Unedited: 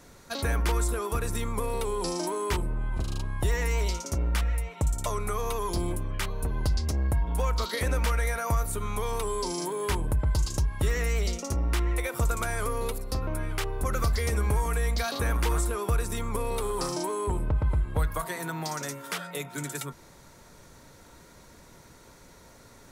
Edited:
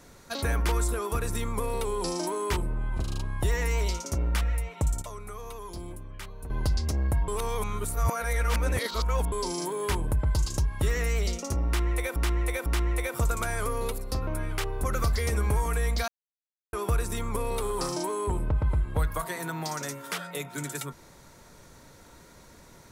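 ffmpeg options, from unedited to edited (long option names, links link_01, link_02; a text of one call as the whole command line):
ffmpeg -i in.wav -filter_complex "[0:a]asplit=9[link_01][link_02][link_03][link_04][link_05][link_06][link_07][link_08][link_09];[link_01]atrim=end=5.022[link_10];[link_02]atrim=start=5.018:end=6.502,asetpts=PTS-STARTPTS,volume=-10dB[link_11];[link_03]atrim=start=6.498:end=7.282[link_12];[link_04]atrim=start=7.278:end=9.322,asetpts=PTS-STARTPTS,areverse[link_13];[link_05]atrim=start=9.318:end=12.162[link_14];[link_06]atrim=start=11.658:end=12.162[link_15];[link_07]atrim=start=11.658:end=15.08,asetpts=PTS-STARTPTS,afade=type=out:start_time=3.418:duration=0.004:curve=hsin[link_16];[link_08]atrim=start=15.08:end=15.73,asetpts=PTS-STARTPTS,volume=0[link_17];[link_09]atrim=start=15.73,asetpts=PTS-STARTPTS,afade=type=in:duration=0.004:curve=hsin[link_18];[link_10][link_11]acrossfade=duration=0.004:curve1=hsin:curve2=hsin[link_19];[link_19][link_12]acrossfade=duration=0.004:curve1=hsin:curve2=hsin[link_20];[link_20][link_13]acrossfade=duration=0.004:curve1=hsin:curve2=hsin[link_21];[link_21][link_14]acrossfade=duration=0.004:curve1=hsin:curve2=hsin[link_22];[link_22][link_15]acrossfade=duration=0.004:curve1=hsin:curve2=hsin[link_23];[link_16][link_17][link_18]concat=n=3:v=0:a=1[link_24];[link_23][link_24]acrossfade=duration=0.004:curve1=hsin:curve2=hsin" out.wav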